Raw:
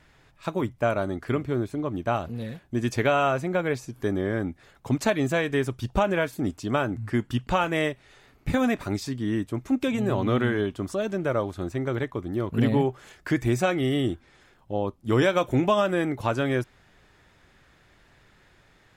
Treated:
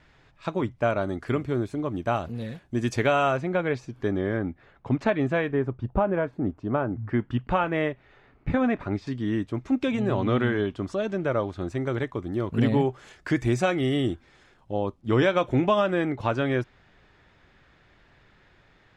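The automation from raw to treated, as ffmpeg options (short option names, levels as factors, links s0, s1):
-af "asetnsamples=n=441:p=0,asendcmd='1.08 lowpass f 9600;3.37 lowpass f 4100;4.37 lowpass f 2400;5.52 lowpass f 1200;7.09 lowpass f 2200;9.07 lowpass f 4900;11.68 lowpass f 8000;15 lowpass f 4400',lowpass=5500"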